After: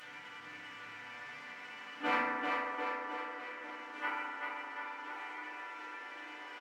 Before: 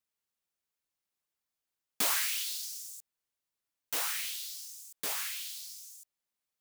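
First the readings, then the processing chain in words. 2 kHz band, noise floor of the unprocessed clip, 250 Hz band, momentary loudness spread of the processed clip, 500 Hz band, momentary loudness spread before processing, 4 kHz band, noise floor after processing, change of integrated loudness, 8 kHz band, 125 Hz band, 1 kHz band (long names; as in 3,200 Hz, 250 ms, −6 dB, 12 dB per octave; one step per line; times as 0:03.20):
+4.5 dB, below −85 dBFS, +10.0 dB, 13 LU, +7.5 dB, 16 LU, −11.0 dB, −50 dBFS, −7.0 dB, below −25 dB, can't be measured, +9.5 dB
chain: linear delta modulator 16 kbit/s, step −39 dBFS
parametric band 160 Hz −7.5 dB 1.2 octaves
resonators tuned to a chord G3 major, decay 0.28 s
noise gate −51 dBFS, range −28 dB
leveller curve on the samples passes 3
parametric band 1,800 Hz +10.5 dB 1.7 octaves
bouncing-ball delay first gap 390 ms, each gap 0.9×, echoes 5
feedback delay network reverb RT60 1.8 s, low-frequency decay 1.4×, high-frequency decay 0.3×, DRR −10 dB
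high-pass filter sweep 140 Hz → 340 Hz, 0:01.13–0:02.84
upward compression, threshold −49 dBFS
level +10 dB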